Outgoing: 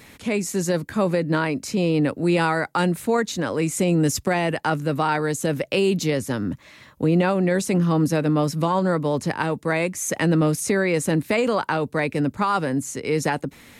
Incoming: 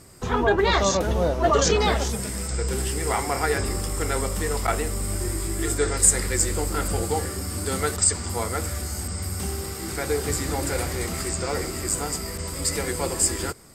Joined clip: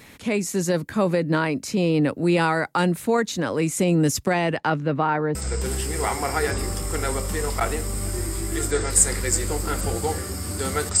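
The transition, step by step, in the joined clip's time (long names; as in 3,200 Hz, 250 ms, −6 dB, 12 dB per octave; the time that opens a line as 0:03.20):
outgoing
0:04.26–0:05.35: low-pass filter 11,000 Hz → 1,200 Hz
0:05.35: continue with incoming from 0:02.42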